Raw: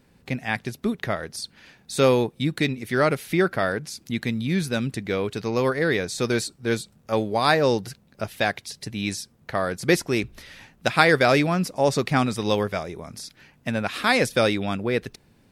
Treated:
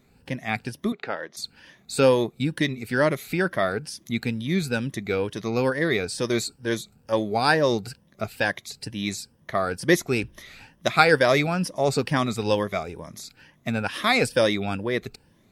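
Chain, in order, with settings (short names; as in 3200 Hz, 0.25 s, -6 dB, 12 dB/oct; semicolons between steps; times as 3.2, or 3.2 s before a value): moving spectral ripple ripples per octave 1.2, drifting +2.2 Hz, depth 10 dB; 0.92–1.37 BPF 320–3800 Hz; gain -2 dB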